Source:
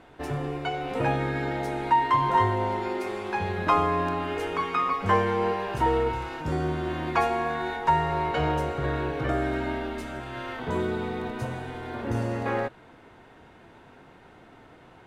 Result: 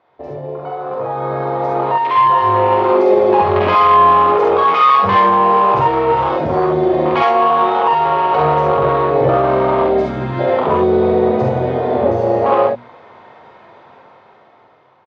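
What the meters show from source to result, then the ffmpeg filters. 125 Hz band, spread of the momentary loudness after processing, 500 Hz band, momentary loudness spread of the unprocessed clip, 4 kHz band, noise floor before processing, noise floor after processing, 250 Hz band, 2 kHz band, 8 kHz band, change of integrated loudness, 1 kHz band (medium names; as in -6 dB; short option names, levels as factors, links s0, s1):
+7.0 dB, 10 LU, +15.5 dB, 10 LU, +9.0 dB, -52 dBFS, -48 dBFS, +10.5 dB, +7.0 dB, no reading, +14.0 dB, +14.0 dB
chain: -filter_complex "[0:a]bandreject=f=2800:w=15,afwtdn=0.0398,equalizer=f=1100:t=o:w=1.3:g=8.5,bandreject=f=60:t=h:w=6,bandreject=f=120:t=h:w=6,bandreject=f=180:t=h:w=6,bandreject=f=240:t=h:w=6,acrossover=split=2500[s0][s1];[s0]acompressor=threshold=0.0316:ratio=6[s2];[s2][s1]amix=inputs=2:normalize=0,alimiter=level_in=1.41:limit=0.0631:level=0:latency=1:release=30,volume=0.708,dynaudnorm=f=500:g=7:m=6.31,asoftclip=type=tanh:threshold=0.211,highpass=130,equalizer=f=170:t=q:w=4:g=-5,equalizer=f=290:t=q:w=4:g=-8,equalizer=f=560:t=q:w=4:g=5,equalizer=f=1500:t=q:w=4:g=-7,lowpass=f=5300:w=0.5412,lowpass=f=5300:w=1.3066,asplit=2[s3][s4];[s4]aecho=0:1:46|67:0.708|0.668[s5];[s3][s5]amix=inputs=2:normalize=0,volume=1.88"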